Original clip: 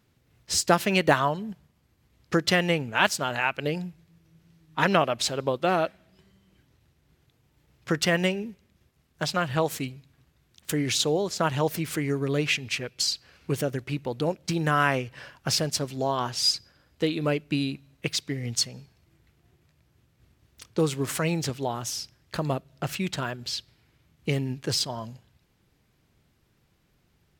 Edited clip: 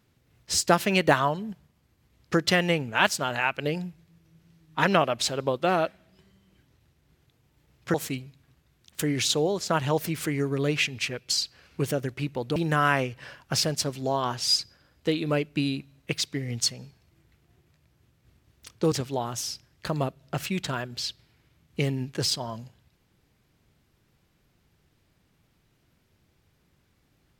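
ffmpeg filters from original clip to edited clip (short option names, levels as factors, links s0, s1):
-filter_complex "[0:a]asplit=4[s0][s1][s2][s3];[s0]atrim=end=7.942[s4];[s1]atrim=start=9.638:end=14.262[s5];[s2]atrim=start=14.508:end=20.872[s6];[s3]atrim=start=21.408[s7];[s4][s5]acrossfade=d=0.004:c1=hsin:c2=hsin[s8];[s8][s6]acrossfade=d=0.004:c1=hsin:c2=hsin[s9];[s9][s7]acrossfade=d=0.004:c1=hsin:c2=hsin"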